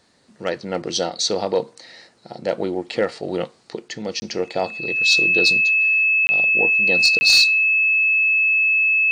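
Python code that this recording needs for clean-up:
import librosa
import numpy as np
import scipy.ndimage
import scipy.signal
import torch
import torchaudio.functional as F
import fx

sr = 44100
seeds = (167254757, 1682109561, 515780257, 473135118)

y = fx.notch(x, sr, hz=2600.0, q=30.0)
y = fx.fix_interpolate(y, sr, at_s=(4.2, 6.27, 7.19), length_ms=20.0)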